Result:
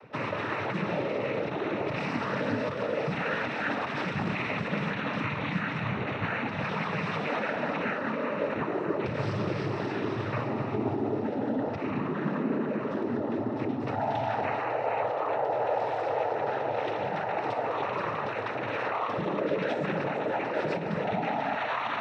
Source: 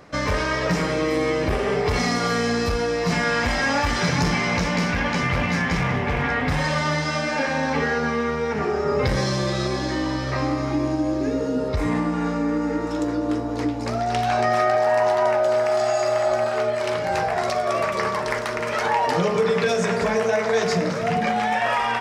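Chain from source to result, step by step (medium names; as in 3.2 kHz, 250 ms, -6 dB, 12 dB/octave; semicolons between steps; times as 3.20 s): low-pass 3.2 kHz 24 dB/octave; peak limiter -17.5 dBFS, peak gain reduction 8 dB; noise-vocoded speech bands 12; trim -4 dB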